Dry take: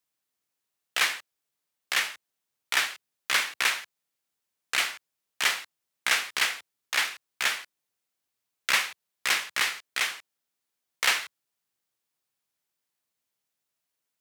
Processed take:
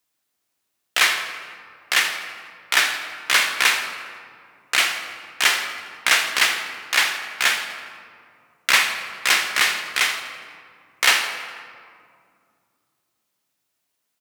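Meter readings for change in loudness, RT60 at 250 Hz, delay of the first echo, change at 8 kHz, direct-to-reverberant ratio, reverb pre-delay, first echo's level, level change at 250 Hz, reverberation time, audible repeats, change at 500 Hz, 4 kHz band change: +7.5 dB, 3.3 s, 82 ms, +7.5 dB, 5.0 dB, 3 ms, −14.0 dB, +9.0 dB, 2.3 s, 2, +8.5 dB, +8.0 dB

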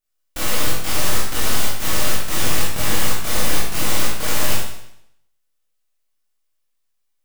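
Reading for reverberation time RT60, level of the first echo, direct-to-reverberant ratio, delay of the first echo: 0.75 s, no echo audible, −7.5 dB, no echo audible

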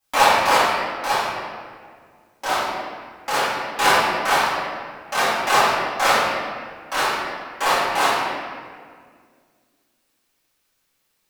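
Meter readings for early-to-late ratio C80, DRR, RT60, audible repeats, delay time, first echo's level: 0.0 dB, −13.5 dB, 1.9 s, no echo audible, no echo audible, no echo audible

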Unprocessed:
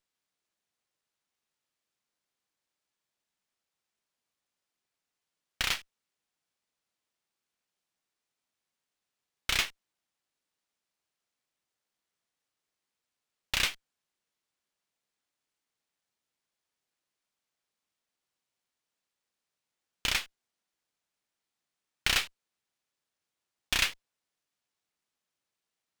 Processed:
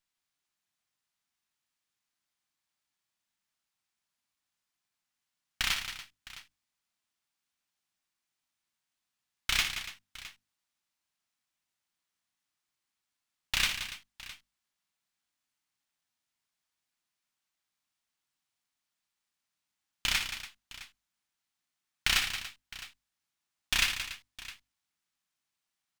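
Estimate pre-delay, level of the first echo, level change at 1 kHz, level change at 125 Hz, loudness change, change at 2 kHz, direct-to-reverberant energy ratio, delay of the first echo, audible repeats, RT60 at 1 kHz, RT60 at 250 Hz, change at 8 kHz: no reverb audible, −9.0 dB, −0.5 dB, −0.5 dB, −0.5 dB, +1.0 dB, no reverb audible, 59 ms, 4, no reverb audible, no reverb audible, +1.0 dB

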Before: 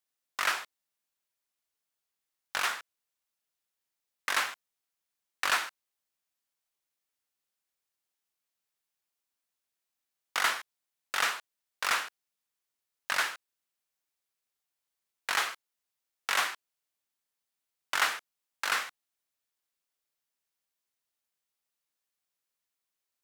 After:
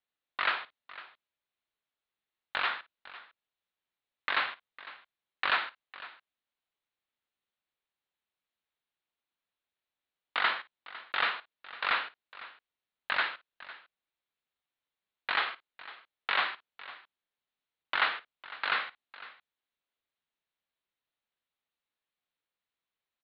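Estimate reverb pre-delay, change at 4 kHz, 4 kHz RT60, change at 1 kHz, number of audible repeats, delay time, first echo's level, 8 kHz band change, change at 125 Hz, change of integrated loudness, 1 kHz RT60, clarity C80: no reverb audible, −1.0 dB, no reverb audible, 0.0 dB, 2, 55 ms, −17.5 dB, below −40 dB, can't be measured, −0.5 dB, no reverb audible, no reverb audible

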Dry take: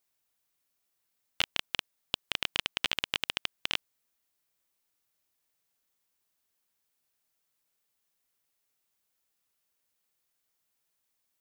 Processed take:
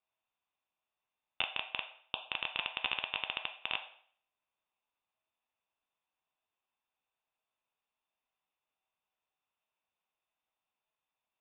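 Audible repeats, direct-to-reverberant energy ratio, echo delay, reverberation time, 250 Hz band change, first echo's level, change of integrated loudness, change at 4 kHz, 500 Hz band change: no echo audible, 4.0 dB, no echo audible, 0.55 s, −8.0 dB, no echo audible, −4.0 dB, −6.0 dB, −3.5 dB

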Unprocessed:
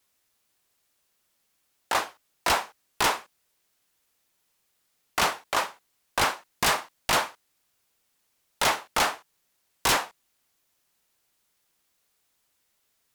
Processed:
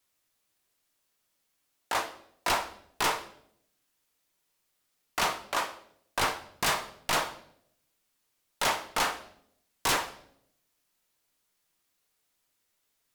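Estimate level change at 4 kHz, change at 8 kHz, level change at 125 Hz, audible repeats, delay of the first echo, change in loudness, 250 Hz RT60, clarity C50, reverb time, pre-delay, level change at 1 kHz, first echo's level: −4.0 dB, −4.0 dB, −3.5 dB, no echo audible, no echo audible, −3.5 dB, 0.90 s, 12.5 dB, 0.70 s, 3 ms, −3.5 dB, no echo audible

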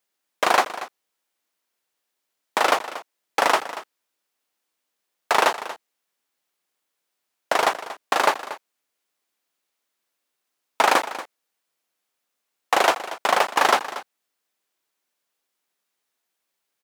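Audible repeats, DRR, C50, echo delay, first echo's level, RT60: 1, no reverb audible, no reverb audible, 234 ms, −14.5 dB, no reverb audible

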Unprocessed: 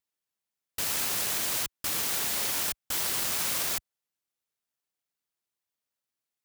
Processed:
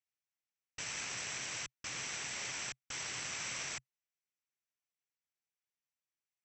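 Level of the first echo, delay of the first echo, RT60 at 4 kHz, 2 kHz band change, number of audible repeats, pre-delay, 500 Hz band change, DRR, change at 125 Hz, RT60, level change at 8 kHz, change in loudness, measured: no echo audible, no echo audible, no reverb audible, −4.5 dB, no echo audible, no reverb audible, −11.5 dB, no reverb audible, −7.0 dB, no reverb audible, −9.5 dB, −12.0 dB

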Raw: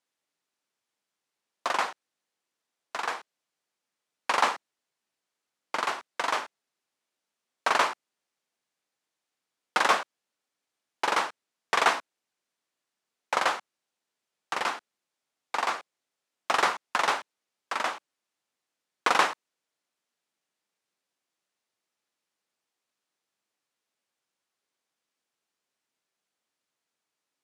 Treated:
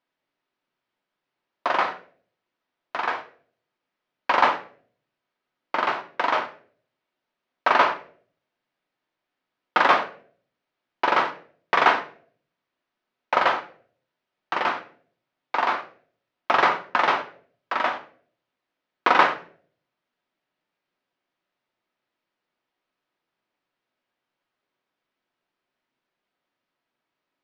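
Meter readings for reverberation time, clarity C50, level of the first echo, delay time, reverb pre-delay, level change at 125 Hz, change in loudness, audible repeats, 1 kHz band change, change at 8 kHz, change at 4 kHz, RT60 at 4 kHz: 0.50 s, 12.5 dB, no echo audible, no echo audible, 3 ms, can't be measured, +5.0 dB, no echo audible, +6.0 dB, below −10 dB, +1.0 dB, 0.35 s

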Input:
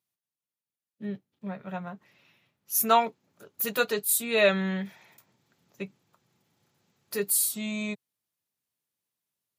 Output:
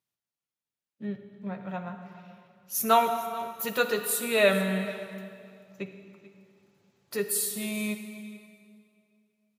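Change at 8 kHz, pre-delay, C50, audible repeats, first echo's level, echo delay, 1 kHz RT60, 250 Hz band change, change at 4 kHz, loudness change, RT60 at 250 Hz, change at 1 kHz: −3.0 dB, 40 ms, 7.5 dB, 1, −19.0 dB, 438 ms, 2.2 s, +0.5 dB, −0.5 dB, −1.5 dB, 2.4 s, +1.0 dB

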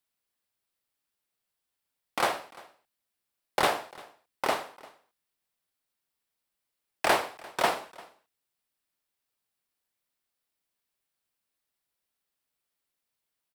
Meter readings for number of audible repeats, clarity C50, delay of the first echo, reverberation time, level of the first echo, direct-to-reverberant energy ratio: 1, no reverb audible, 346 ms, no reverb audible, −22.5 dB, no reverb audible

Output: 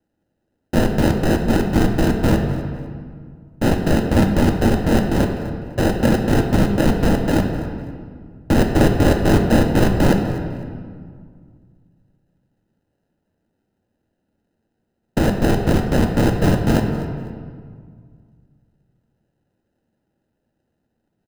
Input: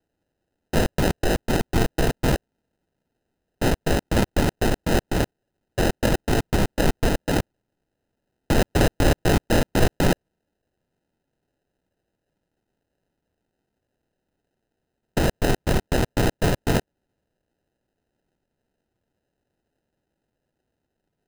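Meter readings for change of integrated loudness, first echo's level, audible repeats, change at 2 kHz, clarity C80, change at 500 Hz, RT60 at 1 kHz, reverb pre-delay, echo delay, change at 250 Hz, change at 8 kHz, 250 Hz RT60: +5.0 dB, −17.0 dB, 1, +2.0 dB, 6.5 dB, +4.5 dB, 1.9 s, 3 ms, 251 ms, +8.0 dB, −1.0 dB, 2.4 s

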